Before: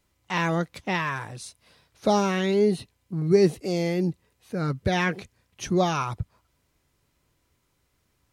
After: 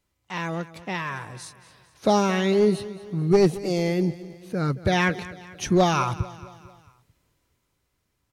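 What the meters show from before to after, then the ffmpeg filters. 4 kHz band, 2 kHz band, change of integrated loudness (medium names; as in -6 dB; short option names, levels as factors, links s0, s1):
+2.0 dB, +1.0 dB, +1.5 dB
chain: -filter_complex "[0:a]dynaudnorm=f=230:g=13:m=4.22,aeval=exprs='clip(val(0),-1,0.299)':c=same,asplit=2[s0][s1];[s1]aecho=0:1:223|446|669|892:0.141|0.072|0.0367|0.0187[s2];[s0][s2]amix=inputs=2:normalize=0,volume=0.562"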